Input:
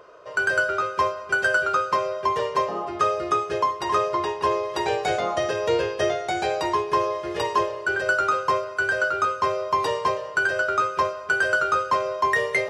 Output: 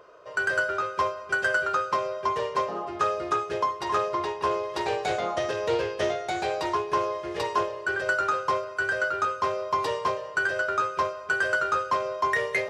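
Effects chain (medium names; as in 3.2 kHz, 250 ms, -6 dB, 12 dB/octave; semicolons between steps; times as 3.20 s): loudspeaker Doppler distortion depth 0.13 ms; trim -3.5 dB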